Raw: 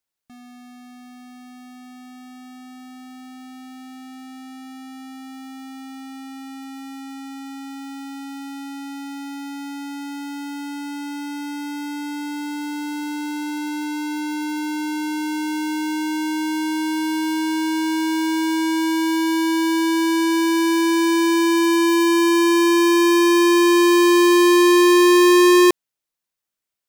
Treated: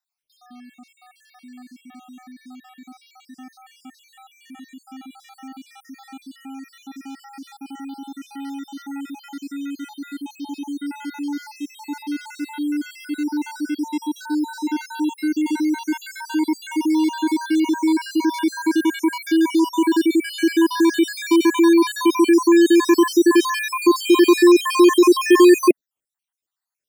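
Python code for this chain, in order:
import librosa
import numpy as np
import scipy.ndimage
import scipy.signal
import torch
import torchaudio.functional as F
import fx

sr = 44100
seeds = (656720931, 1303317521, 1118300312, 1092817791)

y = fx.spec_dropout(x, sr, seeds[0], share_pct=64)
y = fx.dynamic_eq(y, sr, hz=270.0, q=1.8, threshold_db=-34.0, ratio=4.0, max_db=6)
y = y * librosa.db_to_amplitude(1.5)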